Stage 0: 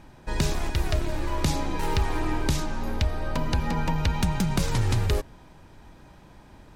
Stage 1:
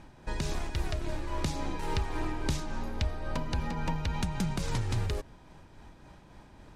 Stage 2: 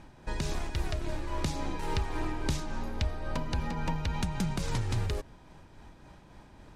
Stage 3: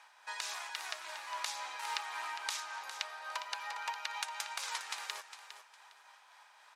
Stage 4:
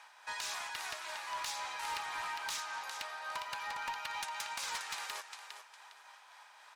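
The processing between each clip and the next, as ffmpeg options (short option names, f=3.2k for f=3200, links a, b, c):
-filter_complex "[0:a]lowpass=11k,asplit=2[a][b];[b]acompressor=threshold=-31dB:ratio=6,volume=1dB[c];[a][c]amix=inputs=2:normalize=0,tremolo=f=3.6:d=0.33,volume=-8dB"
-af anull
-filter_complex "[0:a]highpass=f=920:w=0.5412,highpass=f=920:w=1.3066,asplit=2[a][b];[b]aecho=0:1:407|814|1221:0.282|0.0733|0.0191[c];[a][c]amix=inputs=2:normalize=0,volume=1.5dB"
-af "asoftclip=type=tanh:threshold=-35.5dB,volume=3dB"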